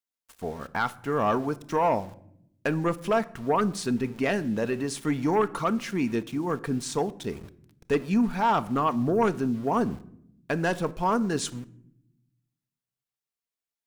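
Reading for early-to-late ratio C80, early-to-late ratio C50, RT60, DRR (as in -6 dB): 22.5 dB, 19.5 dB, 0.70 s, 12.0 dB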